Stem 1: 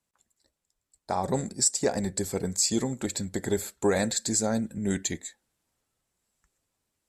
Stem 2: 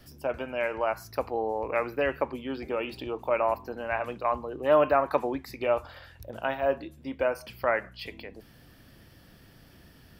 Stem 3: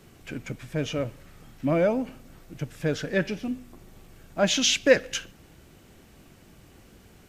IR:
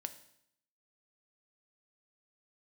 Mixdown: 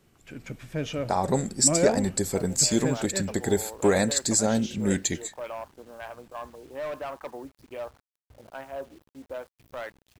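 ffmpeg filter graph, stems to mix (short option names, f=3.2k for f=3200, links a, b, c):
-filter_complex "[0:a]volume=3dB[a];[1:a]afwtdn=0.0178,acrusher=bits=7:mix=0:aa=0.000001,asoftclip=type=hard:threshold=-20dB,adelay=2100,volume=-9.5dB[b];[2:a]dynaudnorm=f=110:g=7:m=8dB,volume=-10dB,afade=t=out:st=2.8:d=0.6:silence=0.223872[c];[a][b][c]amix=inputs=3:normalize=0"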